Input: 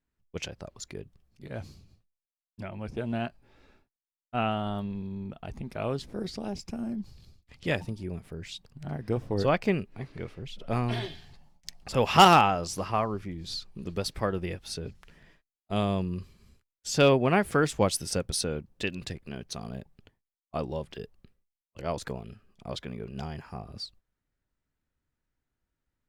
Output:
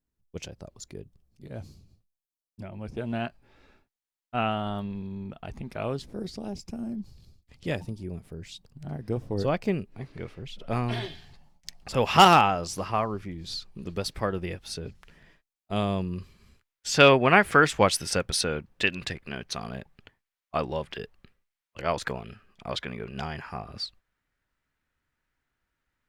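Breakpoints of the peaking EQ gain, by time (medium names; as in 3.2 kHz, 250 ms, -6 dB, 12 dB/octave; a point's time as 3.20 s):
peaking EQ 1.8 kHz 2.5 oct
2.69 s -7 dB
3.15 s +2.5 dB
5.75 s +2.5 dB
6.20 s -5 dB
9.82 s -5 dB
10.29 s +1.5 dB
16.02 s +1.5 dB
16.94 s +10.5 dB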